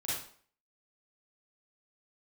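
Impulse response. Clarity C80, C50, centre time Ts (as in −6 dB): 5.5 dB, −1.5 dB, 62 ms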